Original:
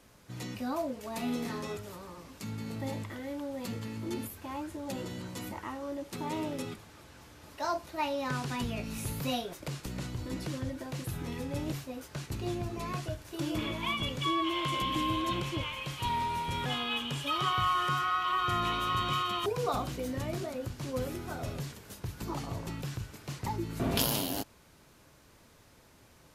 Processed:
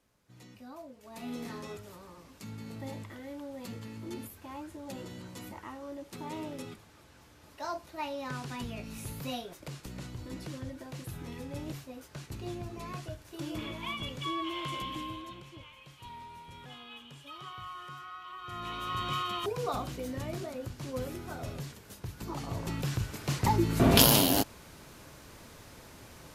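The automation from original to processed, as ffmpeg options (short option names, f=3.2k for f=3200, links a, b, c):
-af "volume=19dB,afade=t=in:st=0.98:d=0.44:silence=0.354813,afade=t=out:st=14.72:d=0.63:silence=0.298538,afade=t=in:st=18.41:d=0.73:silence=0.223872,afade=t=in:st=22.34:d=1.02:silence=0.298538"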